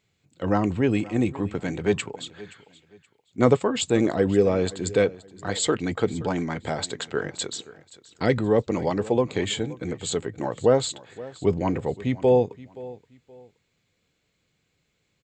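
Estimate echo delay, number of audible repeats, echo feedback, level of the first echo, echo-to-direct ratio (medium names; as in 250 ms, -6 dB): 524 ms, 2, 28%, -19.0 dB, -18.5 dB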